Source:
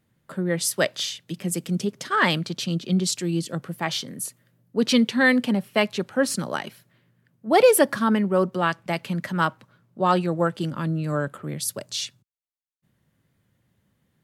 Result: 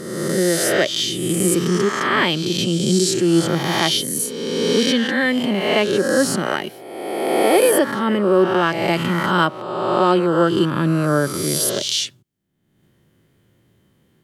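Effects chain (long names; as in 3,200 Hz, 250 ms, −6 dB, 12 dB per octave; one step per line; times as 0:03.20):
peak hold with a rise ahead of every peak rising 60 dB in 1.31 s
speech leveller within 5 dB 0.5 s
hollow resonant body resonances 360/3,100 Hz, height 9 dB, ringing for 25 ms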